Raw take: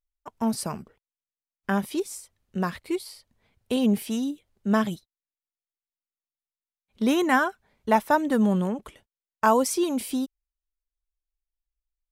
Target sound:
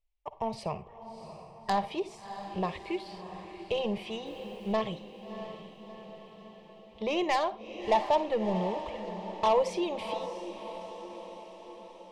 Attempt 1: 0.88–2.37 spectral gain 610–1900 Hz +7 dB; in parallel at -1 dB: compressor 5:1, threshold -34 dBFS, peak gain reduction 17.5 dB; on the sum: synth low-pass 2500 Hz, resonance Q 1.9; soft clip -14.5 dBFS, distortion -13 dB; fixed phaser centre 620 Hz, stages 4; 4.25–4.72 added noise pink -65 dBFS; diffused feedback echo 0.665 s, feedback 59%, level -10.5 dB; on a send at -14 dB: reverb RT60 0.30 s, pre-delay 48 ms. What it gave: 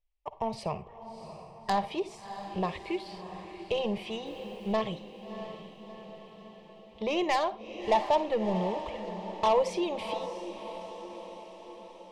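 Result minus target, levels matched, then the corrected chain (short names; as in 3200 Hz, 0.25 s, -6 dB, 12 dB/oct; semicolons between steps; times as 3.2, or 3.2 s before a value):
compressor: peak gain reduction -5.5 dB
0.88–2.37 spectral gain 610–1900 Hz +7 dB; in parallel at -1 dB: compressor 5:1, threshold -41 dBFS, peak gain reduction 23 dB; on the sum: synth low-pass 2500 Hz, resonance Q 1.9; soft clip -14.5 dBFS, distortion -14 dB; fixed phaser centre 620 Hz, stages 4; 4.25–4.72 added noise pink -65 dBFS; diffused feedback echo 0.665 s, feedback 59%, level -10.5 dB; on a send at -14 dB: reverb RT60 0.30 s, pre-delay 48 ms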